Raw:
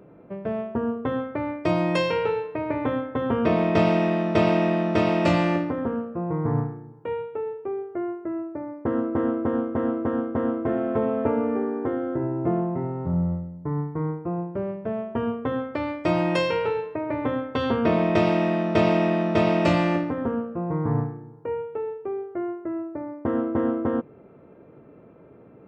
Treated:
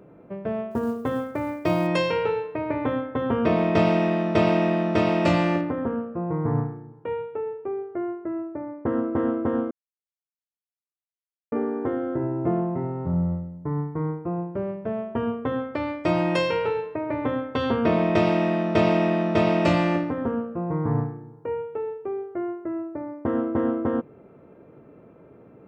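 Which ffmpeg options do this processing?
ffmpeg -i in.wav -filter_complex "[0:a]asplit=3[link_01][link_02][link_03];[link_01]afade=type=out:start_time=0.7:duration=0.02[link_04];[link_02]acrusher=bits=8:mode=log:mix=0:aa=0.000001,afade=type=in:start_time=0.7:duration=0.02,afade=type=out:start_time=1.86:duration=0.02[link_05];[link_03]afade=type=in:start_time=1.86:duration=0.02[link_06];[link_04][link_05][link_06]amix=inputs=3:normalize=0,asettb=1/sr,asplit=3[link_07][link_08][link_09];[link_07]atrim=end=5.614[link_10];[link_08]atrim=start=5.61:end=9.12,asetpts=PTS-STARTPTS,afade=type=in:duration=0.004:curve=qsin,afade=type=out:start_time=3.506:duration=0.004:curve=qsin,lowpass=3600[link_11];[link_09]atrim=start=9.116[link_12];[link_10][link_11]acrossfade=duration=0.004:curve1=hsin:curve2=qsin[link_13];[link_13][link_12]acrossfade=duration=0.004:curve1=qsin:curve2=hsin,asplit=3[link_14][link_15][link_16];[link_14]atrim=end=9.71,asetpts=PTS-STARTPTS,afade=type=out:start_time=9.706:duration=0.004:curve=hsin[link_17];[link_15]atrim=start=9.71:end=11.52,asetpts=PTS-STARTPTS,volume=0[link_18];[link_16]atrim=start=11.52,asetpts=PTS-STARTPTS,afade=type=in:duration=0.004:curve=hsin[link_19];[link_17][link_18][link_19]concat=n=3:v=0:a=1" out.wav

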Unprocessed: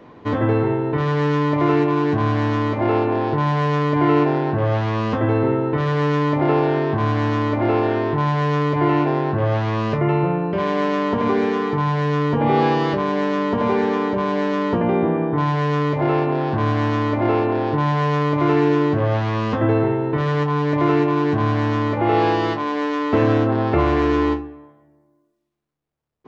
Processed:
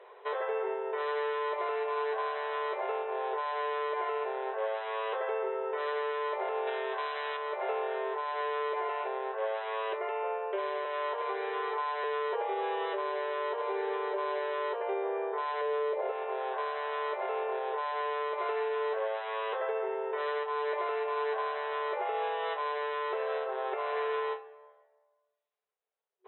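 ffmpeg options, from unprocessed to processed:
ffmpeg -i in.wav -filter_complex "[0:a]asettb=1/sr,asplit=3[link_01][link_02][link_03];[link_01]atrim=end=6.674[link_04];[link_02]atrim=start=6.67:end=7.37,asetpts=PTS-STARTPTS,afade=type=in:duration=0.004:curve=qsin,afade=type=out:start_time=0.696:duration=0.004:curve=qsin,highshelf=frequency=2000:gain=12[link_05];[link_03]atrim=start=7.366[link_06];[link_04][link_05]acrossfade=duration=0.004:curve1=hsin:curve2=qsin[link_07];[link_07][link_06]acrossfade=duration=0.004:curve1=qsin:curve2=hsin,asettb=1/sr,asplit=3[link_08][link_09][link_10];[link_08]atrim=end=10.854[link_11];[link_09]atrim=start=10.85:end=12.04,asetpts=PTS-STARTPTS,afade=type=in:duration=0.004:curve=qsin,afade=type=out:start_time=1.186:duration=0.004:curve=qsin,highpass=frequency=460:width=0.5412,highpass=frequency=460:width=1.3066[link_12];[link_10]atrim=start=12.036[link_13];[link_11][link_12]acrossfade=duration=0.004:curve1=hsin:curve2=qsin[link_14];[link_14][link_13]acrossfade=duration=0.004:curve1=qsin:curve2=hsin,asettb=1/sr,asplit=3[link_15][link_16][link_17];[link_15]atrim=end=15.614[link_18];[link_16]atrim=start=15.61:end=16.12,asetpts=PTS-STARTPTS,afade=type=in:duration=0.004:curve=qsin,afade=type=out:start_time=0.506:duration=0.004:curve=qsin,equalizer=frequency=510:width_type=o:width=0.77:gain=11[link_19];[link_17]atrim=start=16.116[link_20];[link_18][link_19]acrossfade=duration=0.004:curve1=hsin:curve2=qsin[link_21];[link_21][link_20]acrossfade=duration=0.004:curve1=qsin:curve2=hsin,bandreject=frequency=1200:width=30,afftfilt=real='re*between(b*sr/4096,370,4000)':imag='im*between(b*sr/4096,370,4000)':win_size=4096:overlap=0.75,alimiter=limit=-18.5dB:level=0:latency=1:release=439,volume=-5.5dB" out.wav

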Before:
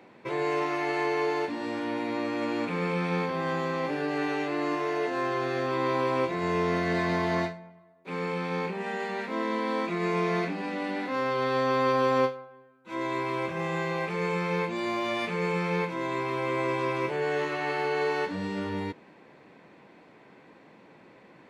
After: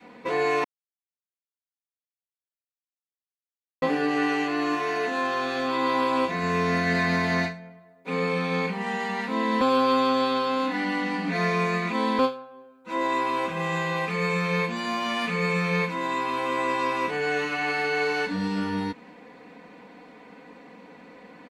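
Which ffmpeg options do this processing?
ffmpeg -i in.wav -filter_complex "[0:a]asplit=5[link_01][link_02][link_03][link_04][link_05];[link_01]atrim=end=0.64,asetpts=PTS-STARTPTS,afade=type=out:start_time=0.636:duration=0.004:curve=hsin[link_06];[link_02]atrim=start=0.64:end=3.82,asetpts=PTS-STARTPTS,volume=0[link_07];[link_03]atrim=start=3.82:end=9.612,asetpts=PTS-STARTPTS,afade=type=in:duration=0.004:curve=hsin[link_08];[link_04]atrim=start=9.608:end=12.192,asetpts=PTS-STARTPTS,areverse[link_09];[link_05]atrim=start=12.188[link_10];[link_06][link_07][link_08]concat=n=3:v=0:a=1[link_11];[link_11][link_09]acrossfade=duration=0.004:curve1=hsin:curve2=hsin[link_12];[link_12][link_10]acrossfade=duration=0.004:curve1=hsin:curve2=hsin,adynamicequalizer=threshold=0.00794:dfrequency=510:dqfactor=1.1:tfrequency=510:tqfactor=1.1:attack=5:release=100:ratio=0.375:range=3.5:mode=cutabove:tftype=bell,aecho=1:1:4.1:0.93,volume=3.5dB" out.wav

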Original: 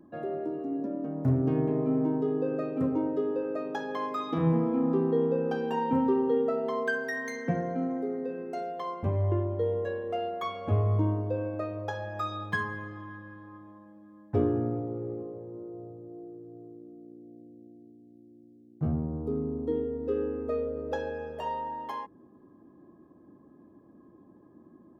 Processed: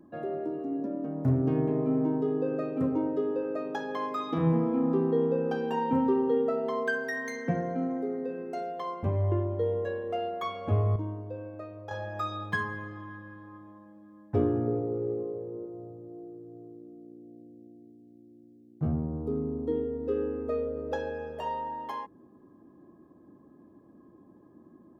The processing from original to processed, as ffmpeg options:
ffmpeg -i in.wav -filter_complex "[0:a]asettb=1/sr,asplit=3[link_01][link_02][link_03];[link_01]atrim=end=14.674[link_04];[link_02]atrim=start=14.67:end=15.66,asetpts=PTS-STARTPTS,afade=type=in:duration=0.004:curve=qsin,afade=type=out:start_time=0.986:duration=0.004:curve=qsin,equalizer=frequency=440:width=5.6:gain=11[link_05];[link_03]atrim=start=15.656[link_06];[link_04][link_05]acrossfade=duration=0.004:curve1=hsin:curve2=qsin[link_07];[link_07][link_06]acrossfade=duration=0.004:curve1=qsin:curve2=hsin,asplit=3[link_08][link_09][link_10];[link_08]atrim=end=10.962[link_11];[link_09]atrim=start=10.958:end=11.912,asetpts=PTS-STARTPTS,volume=-8dB[link_12];[link_10]atrim=start=11.908[link_13];[link_11][link_12]acrossfade=duration=0.004:curve1=hsin:curve2=hsin[link_14];[link_14][link_13]acrossfade=duration=0.004:curve1=hsin:curve2=hsin" out.wav

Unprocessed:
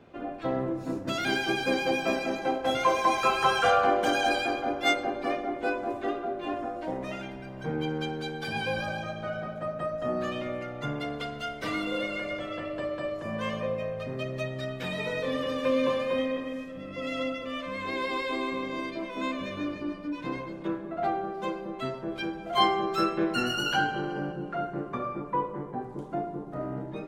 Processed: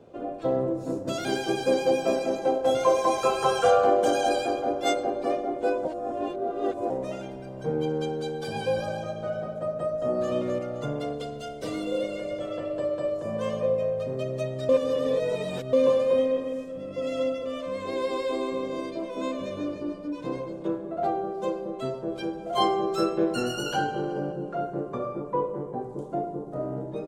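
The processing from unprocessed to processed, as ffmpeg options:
ffmpeg -i in.wav -filter_complex "[0:a]asplit=2[link_01][link_02];[link_02]afade=type=in:start_time=9.88:duration=0.01,afade=type=out:start_time=10.32:duration=0.01,aecho=0:1:260|520|780|1040:0.595662|0.208482|0.0729686|0.025539[link_03];[link_01][link_03]amix=inputs=2:normalize=0,asettb=1/sr,asplit=3[link_04][link_05][link_06];[link_04]atrim=end=11.134[link_07];[link_05]atrim=start=11.13:end=12.41,asetpts=PTS-STARTPTS,afade=type=in:duration=0.004:curve=qsin,afade=type=out:start_time=1.276:duration=0.004:curve=qsin,equalizer=frequency=1200:width=0.95:gain=-5.5[link_08];[link_06]atrim=start=12.406[link_09];[link_07][link_08]acrossfade=duration=0.004:curve1=hsin:curve2=qsin[link_10];[link_10][link_09]acrossfade=duration=0.004:curve1=qsin:curve2=hsin,asplit=5[link_11][link_12][link_13][link_14][link_15];[link_11]atrim=end=5.852[link_16];[link_12]atrim=start=5.848:end=6.902,asetpts=PTS-STARTPTS,areverse[link_17];[link_13]atrim=start=6.898:end=14.692[link_18];[link_14]atrim=start=14.688:end=15.732,asetpts=PTS-STARTPTS,areverse[link_19];[link_15]atrim=start=15.728[link_20];[link_16][link_17]acrossfade=duration=0.004:curve1=hsin:curve2=hsin[link_21];[link_21][link_18]acrossfade=duration=0.004:curve1=hsin:curve2=hsin[link_22];[link_22][link_19]acrossfade=duration=0.004:curve1=hsin:curve2=hsin[link_23];[link_23][link_20]acrossfade=duration=0.004:curve1=hsin:curve2=hsin,equalizer=frequency=125:width_type=o:width=1:gain=4,equalizer=frequency=500:width_type=o:width=1:gain=10,equalizer=frequency=2000:width_type=o:width=1:gain=-7,equalizer=frequency=8000:width_type=o:width=1:gain=8,volume=-2.5dB" out.wav

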